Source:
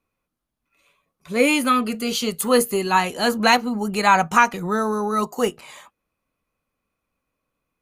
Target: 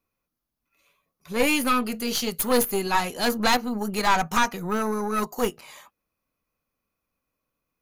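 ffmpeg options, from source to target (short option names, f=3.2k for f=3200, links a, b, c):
-af "aexciter=amount=1.6:drive=3.3:freq=4.7k,aeval=exprs='(tanh(5.01*val(0)+0.7)-tanh(0.7))/5.01':c=same"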